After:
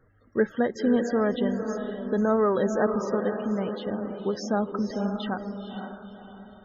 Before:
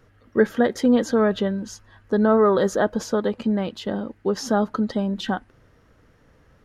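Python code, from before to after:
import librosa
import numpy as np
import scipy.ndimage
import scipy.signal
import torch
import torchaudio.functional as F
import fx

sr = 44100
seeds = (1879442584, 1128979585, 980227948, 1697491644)

y = fx.echo_diffused(x, sr, ms=508, feedback_pct=41, wet_db=-6.0)
y = fx.spec_topn(y, sr, count=64)
y = y * librosa.db_to_amplitude(-5.5)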